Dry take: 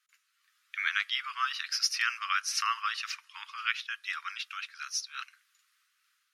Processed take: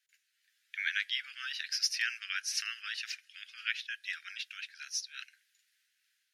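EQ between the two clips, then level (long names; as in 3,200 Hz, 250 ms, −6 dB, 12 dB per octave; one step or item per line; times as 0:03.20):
elliptic high-pass filter 1,600 Hz, stop band 40 dB
−2.0 dB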